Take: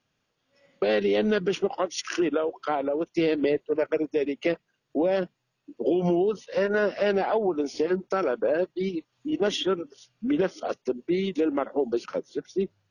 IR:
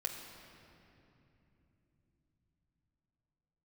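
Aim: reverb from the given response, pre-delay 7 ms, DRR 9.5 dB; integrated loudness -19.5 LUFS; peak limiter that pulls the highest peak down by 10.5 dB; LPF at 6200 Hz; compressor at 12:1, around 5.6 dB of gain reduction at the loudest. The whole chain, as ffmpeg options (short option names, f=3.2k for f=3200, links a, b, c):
-filter_complex "[0:a]lowpass=6.2k,acompressor=threshold=-25dB:ratio=12,alimiter=level_in=1.5dB:limit=-24dB:level=0:latency=1,volume=-1.5dB,asplit=2[a][b];[1:a]atrim=start_sample=2205,adelay=7[c];[b][c]afir=irnorm=-1:irlink=0,volume=-10.5dB[d];[a][d]amix=inputs=2:normalize=0,volume=15dB"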